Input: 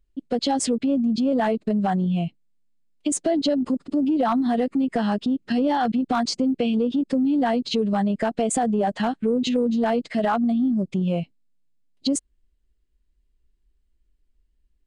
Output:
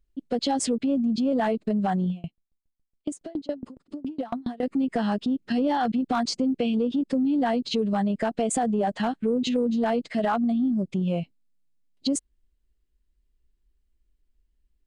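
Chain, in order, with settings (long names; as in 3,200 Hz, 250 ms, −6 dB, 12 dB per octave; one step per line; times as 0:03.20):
0:02.10–0:04.63: tremolo with a ramp in dB decaying 7.2 Hz, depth 29 dB
level −2.5 dB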